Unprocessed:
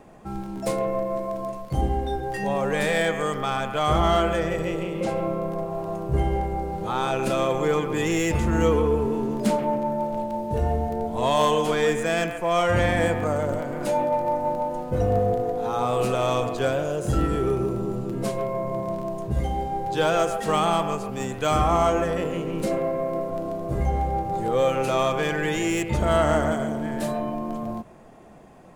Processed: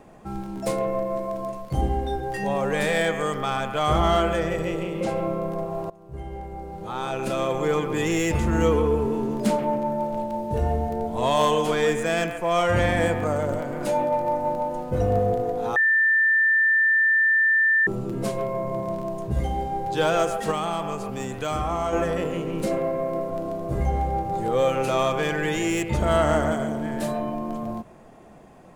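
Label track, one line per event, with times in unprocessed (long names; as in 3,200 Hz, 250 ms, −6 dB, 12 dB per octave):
5.900000	7.850000	fade in, from −22 dB
15.760000	17.870000	beep over 1,780 Hz −16 dBFS
20.510000	21.930000	downward compressor 2 to 1, threshold −26 dBFS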